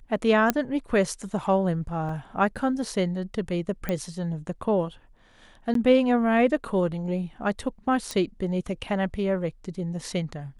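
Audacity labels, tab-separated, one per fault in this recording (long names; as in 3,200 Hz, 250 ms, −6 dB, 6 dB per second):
0.500000	0.500000	click −6 dBFS
2.090000	2.090000	drop-out 3.3 ms
3.890000	3.890000	click −14 dBFS
5.740000	5.750000	drop-out 13 ms
8.110000	8.110000	click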